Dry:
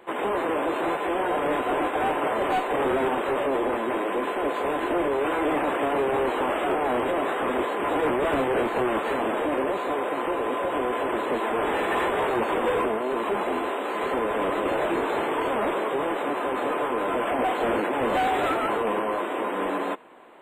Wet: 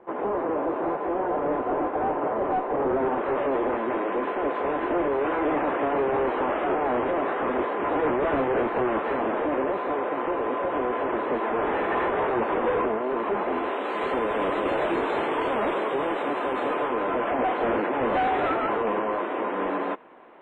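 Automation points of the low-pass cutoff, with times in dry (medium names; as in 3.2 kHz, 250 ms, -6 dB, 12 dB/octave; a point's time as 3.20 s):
2.87 s 1.1 kHz
3.46 s 2.1 kHz
13.46 s 2.1 kHz
13.96 s 5 kHz
16.64 s 5 kHz
17.13 s 2.5 kHz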